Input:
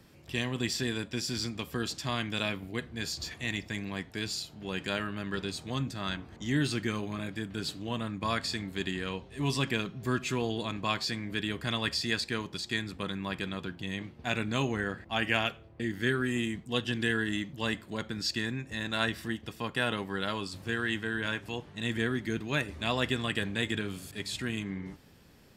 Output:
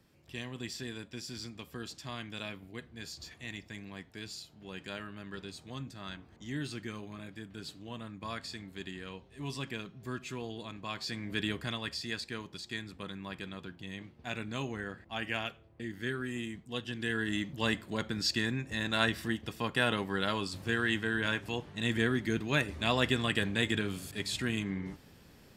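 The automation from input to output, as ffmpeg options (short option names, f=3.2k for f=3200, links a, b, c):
-af "volume=8dB,afade=t=in:st=10.91:d=0.55:silence=0.354813,afade=t=out:st=11.46:d=0.33:silence=0.446684,afade=t=in:st=16.98:d=0.55:silence=0.398107"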